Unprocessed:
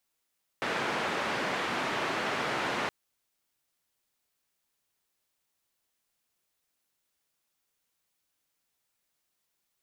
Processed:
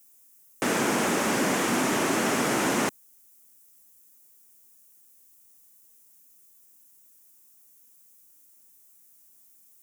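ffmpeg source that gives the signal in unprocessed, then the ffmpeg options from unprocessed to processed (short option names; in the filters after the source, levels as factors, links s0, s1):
-f lavfi -i "anoisesrc=c=white:d=2.27:r=44100:seed=1,highpass=f=170,lowpass=f=1800,volume=-15.8dB"
-filter_complex "[0:a]equalizer=f=250:w=0.95:g=11.5,asplit=2[s0][s1];[s1]alimiter=level_in=1.26:limit=0.0631:level=0:latency=1,volume=0.794,volume=0.75[s2];[s0][s2]amix=inputs=2:normalize=0,aexciter=amount=3.9:drive=8.6:freq=5900"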